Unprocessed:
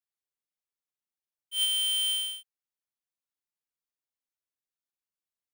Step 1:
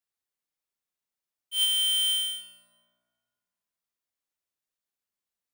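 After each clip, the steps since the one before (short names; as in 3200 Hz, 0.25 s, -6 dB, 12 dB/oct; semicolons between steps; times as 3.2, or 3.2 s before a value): plate-style reverb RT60 2.1 s, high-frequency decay 0.45×, DRR 7 dB; gain +2.5 dB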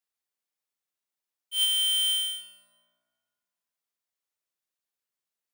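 low shelf 180 Hz -9.5 dB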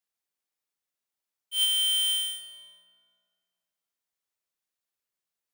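darkening echo 0.444 s, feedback 23%, low-pass 1500 Hz, level -13.5 dB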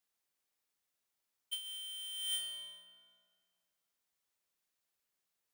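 negative-ratio compressor -36 dBFS, ratio -1; gain -6 dB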